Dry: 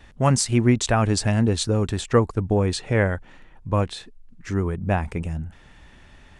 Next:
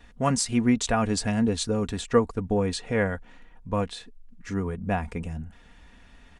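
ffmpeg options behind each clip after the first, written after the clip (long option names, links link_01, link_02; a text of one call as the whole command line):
ffmpeg -i in.wav -af "aecho=1:1:4.2:0.5,volume=-4.5dB" out.wav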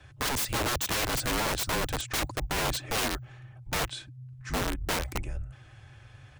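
ffmpeg -i in.wav -af "aeval=exprs='(mod(15*val(0)+1,2)-1)/15':channel_layout=same,afreqshift=-140" out.wav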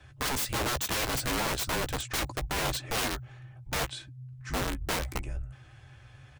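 ffmpeg -i in.wav -filter_complex "[0:a]asplit=2[link_01][link_02];[link_02]adelay=15,volume=-10.5dB[link_03];[link_01][link_03]amix=inputs=2:normalize=0,volume=-1.5dB" out.wav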